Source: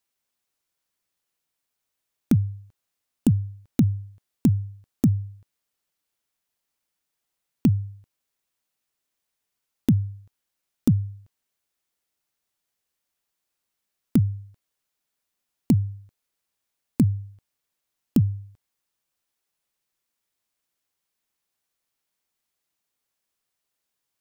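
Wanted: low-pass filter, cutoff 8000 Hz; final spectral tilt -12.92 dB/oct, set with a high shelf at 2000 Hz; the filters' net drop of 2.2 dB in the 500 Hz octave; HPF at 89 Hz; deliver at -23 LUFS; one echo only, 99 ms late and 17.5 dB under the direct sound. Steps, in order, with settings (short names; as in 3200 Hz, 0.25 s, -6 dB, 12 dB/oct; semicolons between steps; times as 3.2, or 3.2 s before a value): HPF 89 Hz; LPF 8000 Hz; bell 500 Hz -3 dB; high shelf 2000 Hz -7.5 dB; echo 99 ms -17.5 dB; gain +3 dB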